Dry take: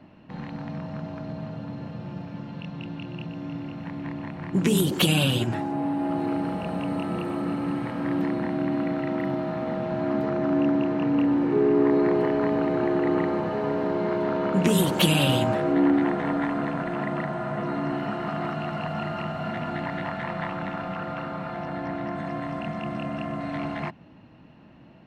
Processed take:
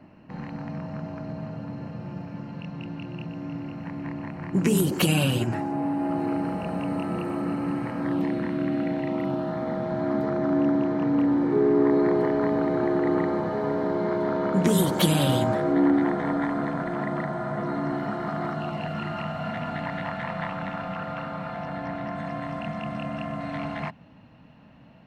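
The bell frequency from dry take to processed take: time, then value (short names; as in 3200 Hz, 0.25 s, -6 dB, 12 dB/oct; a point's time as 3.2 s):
bell -12.5 dB 0.28 oct
7.98 s 3500 Hz
8.47 s 700 Hz
9.59 s 2700 Hz
18.56 s 2700 Hz
19.24 s 350 Hz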